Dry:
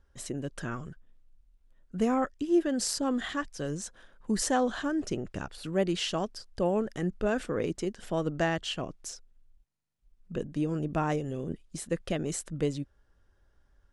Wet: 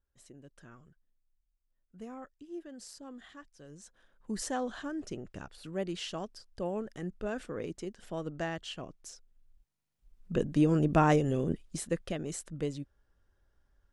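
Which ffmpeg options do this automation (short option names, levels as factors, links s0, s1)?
-af "volume=1.78,afade=t=in:st=3.67:d=0.67:silence=0.298538,afade=t=in:st=9.11:d=1.5:silence=0.237137,afade=t=out:st=11.34:d=0.8:silence=0.316228"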